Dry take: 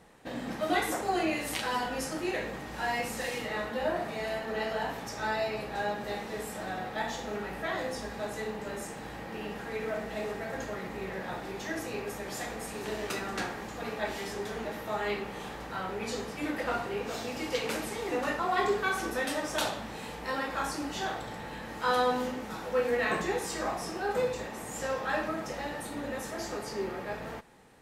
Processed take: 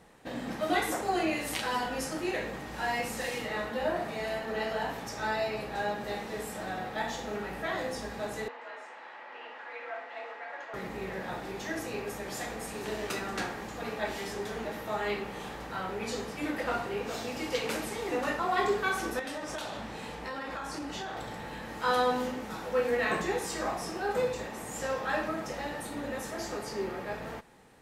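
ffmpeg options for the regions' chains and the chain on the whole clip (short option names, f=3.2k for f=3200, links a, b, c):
-filter_complex "[0:a]asettb=1/sr,asplit=3[a][b][c];[a]atrim=end=8.484[d];[b]atrim=start=8.48:end=10.74,asetpts=PTS-STARTPTS,afade=t=in:d=0.004:c=qsin,afade=t=out:st=2.256:d=0.004:c=qsin,highpass=780,lowpass=2.5k,afreqshift=42[e];[c]atrim=start=10.736[f];[d][e]acrossfade=d=0.004:c1=hsin:c2=qsin[g];[g][f]acrossfade=d=0.004:c1=qsin:c2=hsin,asettb=1/sr,asplit=3[h][i][j];[h]atrim=end=19.194[k];[i]atrim=start=19.19:end=21.17,asetpts=PTS-STARTPTS,afade=t=in:d=0.004:c=qsin,afade=t=out:st=1.976:d=0.004:c=qsin,highshelf=f=11k:g=-10,acompressor=threshold=-33dB:ratio=10:attack=3.2:release=140:knee=1:detection=peak[l];[j]atrim=start=21.166[m];[k][l]acrossfade=d=0.004:c1=hsin:c2=qsin[n];[n][m]acrossfade=d=0.004:c1=qsin:c2=hsin"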